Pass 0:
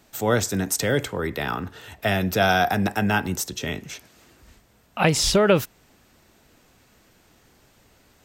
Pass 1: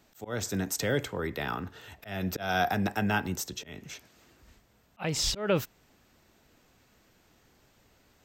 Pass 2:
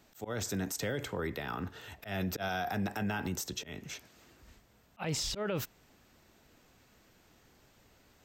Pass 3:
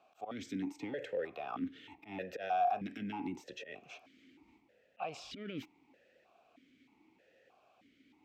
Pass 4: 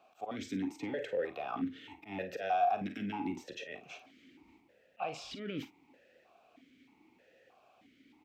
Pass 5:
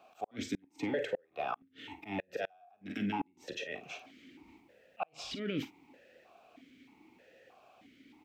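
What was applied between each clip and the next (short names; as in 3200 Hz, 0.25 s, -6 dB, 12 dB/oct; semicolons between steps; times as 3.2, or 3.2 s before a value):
bell 10000 Hz -13 dB 0.24 oct; auto swell 0.228 s; gain -6 dB
limiter -26 dBFS, peak gain reduction 11 dB
in parallel at -3.5 dB: soft clip -34.5 dBFS, distortion -11 dB; on the sum: vowel sequencer 3.2 Hz; gain +4.5 dB
early reflections 40 ms -12.5 dB, 52 ms -13.5 dB; gain +2.5 dB
flipped gate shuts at -27 dBFS, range -36 dB; gain +4 dB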